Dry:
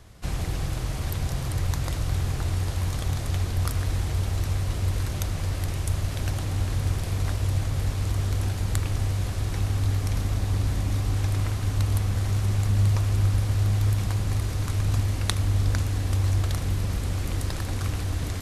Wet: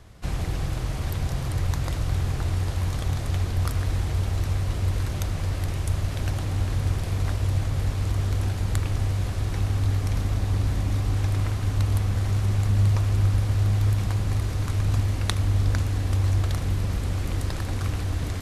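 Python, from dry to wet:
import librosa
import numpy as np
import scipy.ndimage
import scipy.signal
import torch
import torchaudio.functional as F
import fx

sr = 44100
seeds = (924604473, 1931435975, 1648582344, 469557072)

y = fx.high_shelf(x, sr, hz=4600.0, db=-5.0)
y = F.gain(torch.from_numpy(y), 1.0).numpy()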